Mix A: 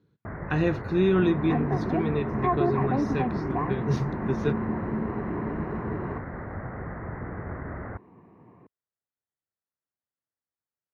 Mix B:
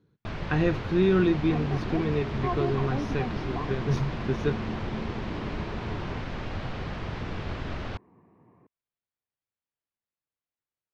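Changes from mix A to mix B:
first sound: remove Chebyshev low-pass filter 2,000 Hz, order 6
second sound −6.0 dB
master: remove high-pass filter 49 Hz

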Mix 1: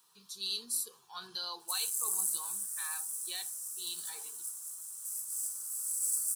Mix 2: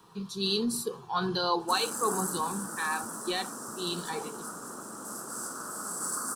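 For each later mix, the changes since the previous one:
background: remove first difference
master: remove first-order pre-emphasis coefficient 0.97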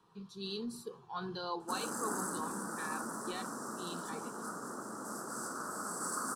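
speech −10.5 dB
master: add high-shelf EQ 5,900 Hz −10 dB

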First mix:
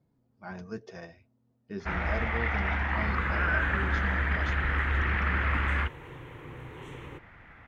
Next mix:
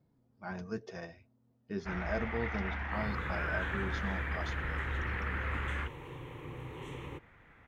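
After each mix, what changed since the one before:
first sound −8.5 dB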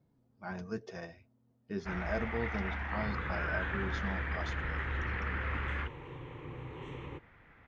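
second sound: add high-frequency loss of the air 130 metres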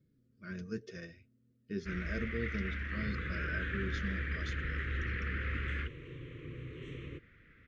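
master: add Butterworth band-reject 830 Hz, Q 0.82

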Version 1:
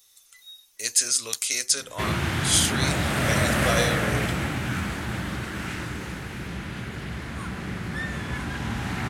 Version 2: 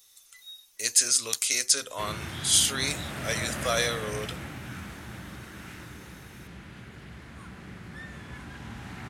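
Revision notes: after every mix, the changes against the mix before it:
background −11.5 dB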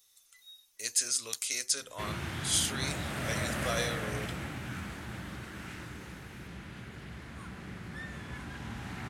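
speech −7.5 dB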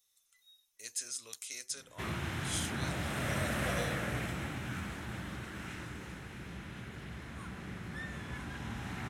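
speech −9.5 dB
master: add notch filter 4,600 Hz, Q 13

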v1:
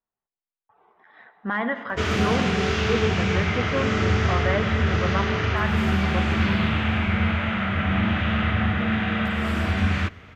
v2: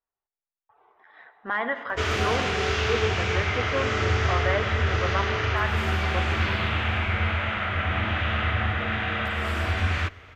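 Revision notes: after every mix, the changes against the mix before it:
master: add parametric band 190 Hz −14.5 dB 0.84 octaves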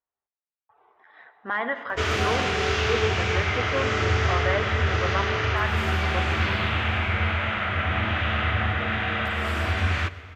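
background: send +10.5 dB
master: add high-pass filter 50 Hz

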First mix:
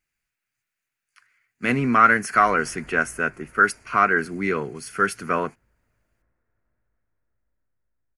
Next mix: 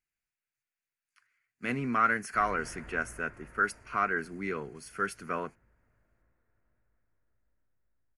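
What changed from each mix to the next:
speech −10.5 dB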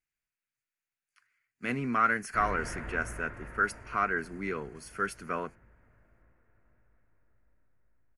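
background +8.0 dB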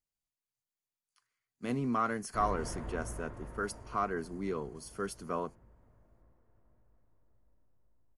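master: add flat-topped bell 1,900 Hz −12.5 dB 1.2 octaves

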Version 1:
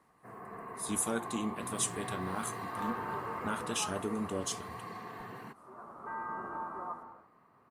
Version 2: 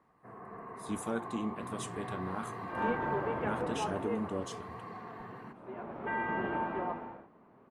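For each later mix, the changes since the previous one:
second sound: remove transistor ladder low-pass 1,300 Hz, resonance 75%
master: add low-pass filter 1,700 Hz 6 dB per octave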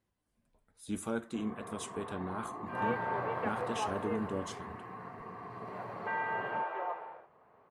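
first sound: entry +1.10 s
second sound: add Butterworth high-pass 440 Hz 36 dB per octave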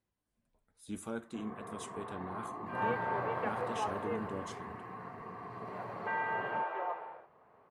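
speech −4.5 dB

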